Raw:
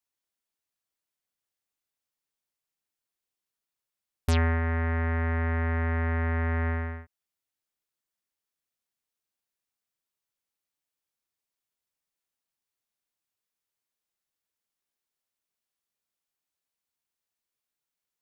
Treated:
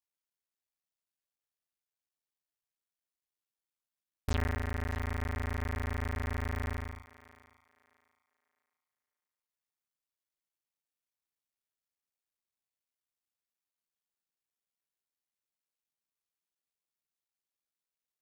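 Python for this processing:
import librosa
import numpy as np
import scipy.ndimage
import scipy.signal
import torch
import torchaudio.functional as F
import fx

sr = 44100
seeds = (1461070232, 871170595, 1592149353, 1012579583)

y = fx.cycle_switch(x, sr, every=3, mode='muted')
y = fx.echo_thinned(y, sr, ms=618, feedback_pct=26, hz=350.0, wet_db=-16.5)
y = y * librosa.db_to_amplitude(-6.0)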